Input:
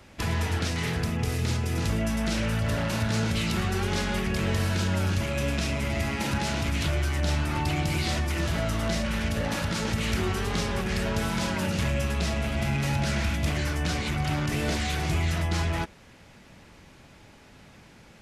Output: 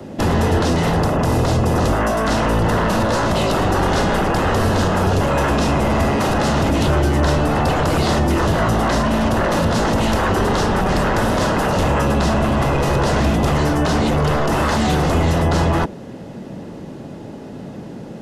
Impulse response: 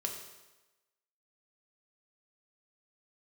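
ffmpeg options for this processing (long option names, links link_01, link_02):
-filter_complex "[0:a]acrossover=split=130|670|1900[link_01][link_02][link_03][link_04];[link_02]aeval=exprs='0.0891*sin(PI/2*5.01*val(0)/0.0891)':channel_layout=same[link_05];[link_01][link_05][link_03][link_04]amix=inputs=4:normalize=0,bandreject=frequency=2300:width=8.1,volume=6dB"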